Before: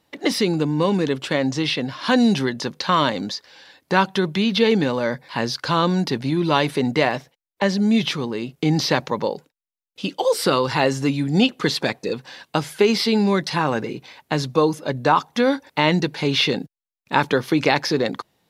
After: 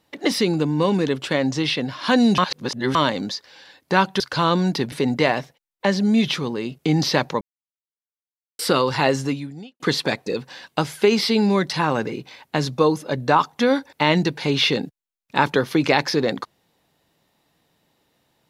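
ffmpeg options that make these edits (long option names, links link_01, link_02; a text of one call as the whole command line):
ffmpeg -i in.wav -filter_complex "[0:a]asplit=8[link_01][link_02][link_03][link_04][link_05][link_06][link_07][link_08];[link_01]atrim=end=2.382[link_09];[link_02]atrim=start=2.378:end=2.952,asetpts=PTS-STARTPTS,areverse[link_10];[link_03]atrim=start=2.948:end=4.202[link_11];[link_04]atrim=start=5.518:end=6.242[link_12];[link_05]atrim=start=6.688:end=9.18,asetpts=PTS-STARTPTS,afade=type=out:start_time=2.488:duration=0.004:curve=hsin[link_13];[link_06]atrim=start=9.18:end=10.36,asetpts=PTS-STARTPTS,volume=0[link_14];[link_07]atrim=start=10.36:end=11.57,asetpts=PTS-STARTPTS,afade=type=in:duration=0.004:curve=hsin,afade=type=out:start_time=0.61:duration=0.6:curve=qua[link_15];[link_08]atrim=start=11.57,asetpts=PTS-STARTPTS,afade=type=in:duration=0.004:curve=hsin[link_16];[link_09][link_10]acrossfade=duration=0.004:curve1=hsin:curve2=hsin[link_17];[link_17][link_11]acrossfade=duration=0.004:curve1=hsin:curve2=hsin[link_18];[link_18][link_12]acrossfade=duration=0.004:curve1=hsin:curve2=hsin[link_19];[link_13][link_14][link_15][link_16]concat=n=4:v=0:a=1[link_20];[link_19][link_20]acrossfade=duration=0.004:curve1=hsin:curve2=hsin" out.wav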